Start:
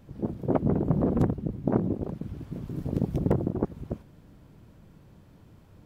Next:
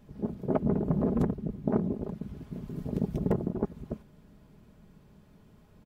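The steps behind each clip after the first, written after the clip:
comb filter 4.8 ms, depth 45%
level −3.5 dB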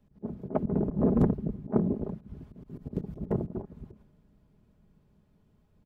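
high-shelf EQ 2,100 Hz −11 dB
volume swells 104 ms
multiband upward and downward expander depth 40%
level +2 dB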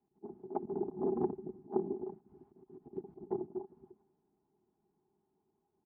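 pair of resonant band-passes 550 Hz, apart 1.1 octaves
level +1 dB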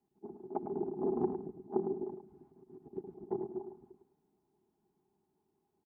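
repeating echo 106 ms, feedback 15%, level −8 dB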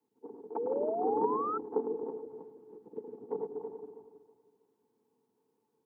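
feedback delay that plays each chunk backwards 161 ms, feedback 52%, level −6.5 dB
sound drawn into the spectrogram rise, 0:00.56–0:01.58, 390–1,300 Hz −34 dBFS
frequency shifter +60 Hz

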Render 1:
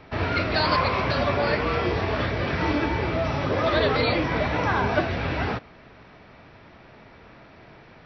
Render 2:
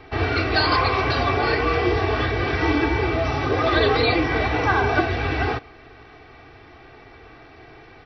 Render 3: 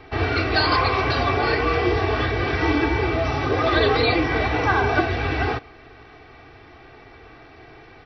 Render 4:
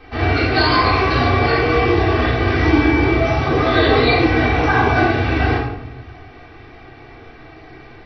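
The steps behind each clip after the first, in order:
comb filter 2.6 ms, depth 76%; level +1.5 dB
no processing that can be heard
rectangular room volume 260 cubic metres, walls mixed, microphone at 2 metres; level −2 dB

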